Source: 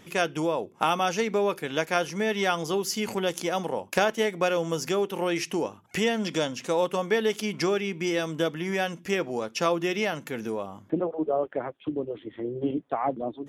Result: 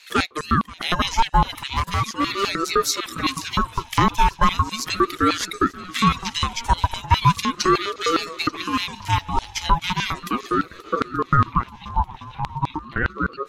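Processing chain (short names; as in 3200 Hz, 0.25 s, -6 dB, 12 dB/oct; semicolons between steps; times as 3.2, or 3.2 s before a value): bin magnitudes rounded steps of 15 dB; reverb removal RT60 0.54 s; in parallel at +1 dB: limiter -20.5 dBFS, peak gain reduction 10.5 dB; 3–3.75 on the sum: dispersion lows, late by 0.137 s, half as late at 480 Hz; LFO high-pass square 4.9 Hz 460–3200 Hz; 1.75–2.44 hard clip -17.5 dBFS, distortion -19 dB; on a send: swung echo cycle 0.885 s, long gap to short 1.5:1, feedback 51%, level -19.5 dB; on the sum: ring modulator with a swept carrier 640 Hz, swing 30%, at 0.37 Hz; gain +3 dB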